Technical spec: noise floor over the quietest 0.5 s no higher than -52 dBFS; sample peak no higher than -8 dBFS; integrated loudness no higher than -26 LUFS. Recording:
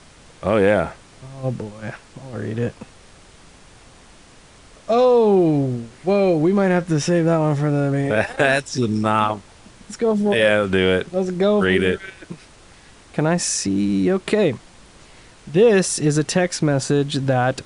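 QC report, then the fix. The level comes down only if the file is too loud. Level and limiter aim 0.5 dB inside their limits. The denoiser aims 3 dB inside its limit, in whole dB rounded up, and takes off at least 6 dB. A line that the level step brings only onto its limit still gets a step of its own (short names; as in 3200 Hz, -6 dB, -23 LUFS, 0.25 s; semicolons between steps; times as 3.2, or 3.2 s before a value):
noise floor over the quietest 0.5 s -47 dBFS: fail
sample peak -3.5 dBFS: fail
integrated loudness -19.0 LUFS: fail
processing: gain -7.5 dB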